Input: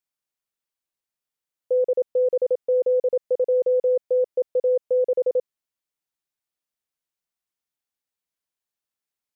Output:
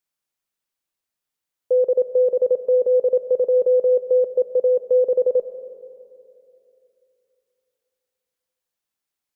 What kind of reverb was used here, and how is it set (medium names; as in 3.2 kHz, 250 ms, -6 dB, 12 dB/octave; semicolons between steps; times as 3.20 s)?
algorithmic reverb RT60 2.8 s, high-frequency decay 0.35×, pre-delay 75 ms, DRR 12 dB; trim +3.5 dB